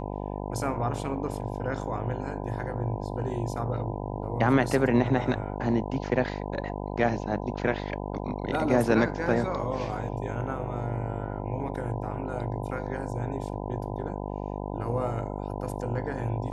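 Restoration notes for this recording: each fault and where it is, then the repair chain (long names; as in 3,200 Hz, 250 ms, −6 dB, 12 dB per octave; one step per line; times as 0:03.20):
mains buzz 50 Hz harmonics 20 −34 dBFS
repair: hum removal 50 Hz, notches 20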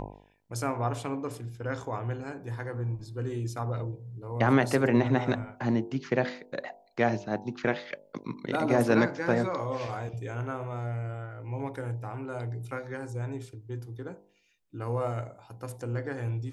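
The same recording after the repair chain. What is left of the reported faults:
none of them is left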